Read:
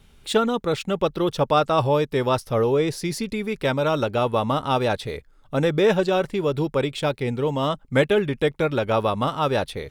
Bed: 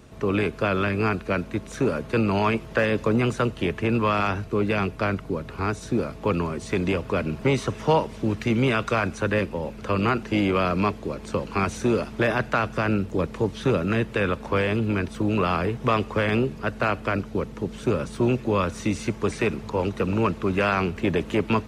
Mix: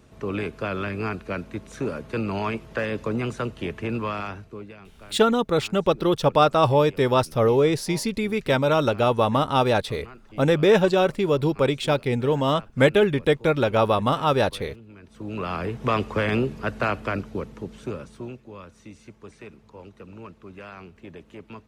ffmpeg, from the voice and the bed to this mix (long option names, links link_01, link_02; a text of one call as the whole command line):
ffmpeg -i stem1.wav -i stem2.wav -filter_complex "[0:a]adelay=4850,volume=1.5dB[link_01];[1:a]volume=17dB,afade=type=out:start_time=3.95:duration=0.82:silence=0.133352,afade=type=in:start_time=15.01:duration=0.97:silence=0.0794328,afade=type=out:start_time=16.83:duration=1.58:silence=0.11885[link_02];[link_01][link_02]amix=inputs=2:normalize=0" out.wav